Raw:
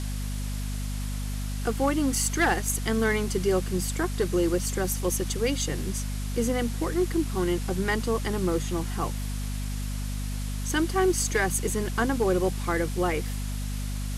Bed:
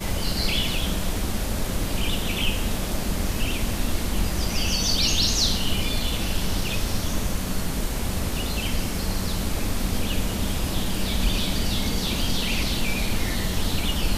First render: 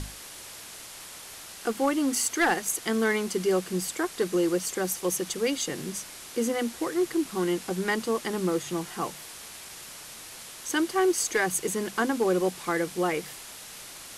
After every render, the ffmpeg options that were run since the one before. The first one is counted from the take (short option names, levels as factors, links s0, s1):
-af "bandreject=f=50:t=h:w=6,bandreject=f=100:t=h:w=6,bandreject=f=150:t=h:w=6,bandreject=f=200:t=h:w=6,bandreject=f=250:t=h:w=6"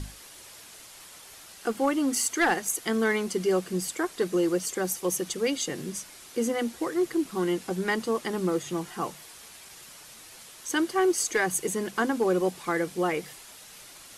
-af "afftdn=nr=6:nf=-44"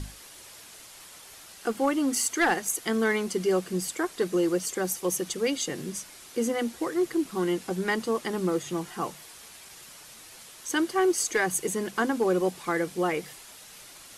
-af anull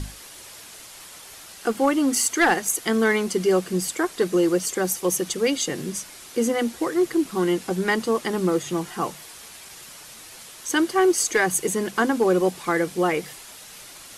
-af "volume=1.78"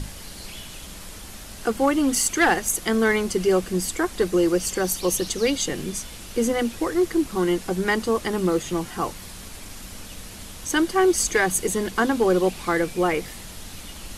-filter_complex "[1:a]volume=0.158[s0];[0:a][s0]amix=inputs=2:normalize=0"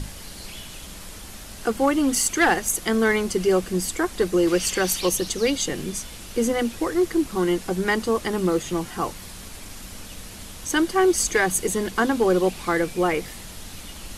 -filter_complex "[0:a]asettb=1/sr,asplit=3[s0][s1][s2];[s0]atrim=end=4.474[s3];[s1]atrim=start=4.47:end=5.09,asetpts=PTS-STARTPTS,afade=t=in:d=0.004:c=qsin,afade=t=out:st=0.616:d=0.004:c=qsin,equalizer=f=2700:w=0.73:g=8.5[s4];[s2]atrim=start=5.086[s5];[s3][s4]acrossfade=d=0.004:c1=hsin:c2=qsin[s6];[s6][s5]acrossfade=d=0.004:c1=qsin:c2=hsin"